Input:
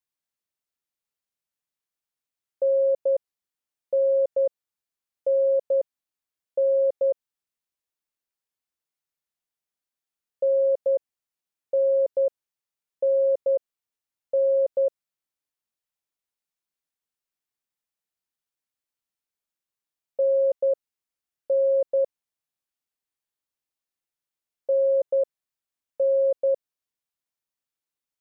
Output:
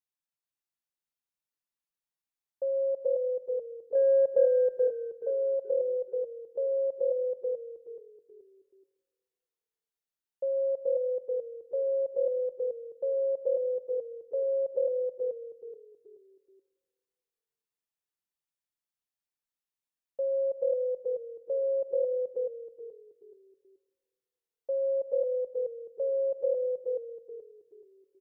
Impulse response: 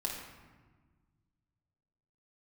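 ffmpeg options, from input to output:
-filter_complex "[0:a]asettb=1/sr,asplit=3[link_01][link_02][link_03];[link_01]atrim=end=3.954[link_04];[link_02]atrim=start=3.95:end=4.45,asetpts=PTS-STARTPTS,afade=type=in:duration=0.004:curve=qsin,afade=type=out:start_time=0.496:duration=0.004:curve=qsin,acontrast=66[link_05];[link_03]atrim=start=4.446[link_06];[link_04][link_05]acrossfade=duration=0.004:curve1=hsin:curve2=qsin[link_07];[link_07][link_06]acrossfade=duration=0.004:curve1=qsin:curve2=hsin,asplit=5[link_08][link_09][link_10][link_11][link_12];[link_09]adelay=428,afreqshift=-39,volume=-3dB[link_13];[link_10]adelay=856,afreqshift=-78,volume=-12.9dB[link_14];[link_11]adelay=1284,afreqshift=-117,volume=-22.8dB[link_15];[link_12]adelay=1712,afreqshift=-156,volume=-32.7dB[link_16];[link_08][link_13][link_14][link_15][link_16]amix=inputs=5:normalize=0,asplit=2[link_17][link_18];[1:a]atrim=start_sample=2205[link_19];[link_18][link_19]afir=irnorm=-1:irlink=0,volume=-13dB[link_20];[link_17][link_20]amix=inputs=2:normalize=0,volume=-9dB"

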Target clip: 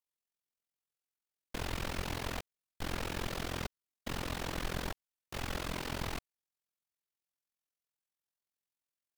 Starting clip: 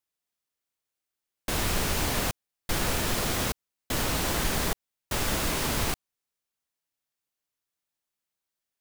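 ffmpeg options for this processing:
ffmpeg -i in.wav -filter_complex "[0:a]acrossover=split=5100[link_01][link_02];[link_02]acompressor=threshold=-41dB:ratio=4:attack=1:release=60[link_03];[link_01][link_03]amix=inputs=2:normalize=0,tremolo=f=45:d=0.947,asetrate=42336,aresample=44100,volume=-5.5dB" out.wav

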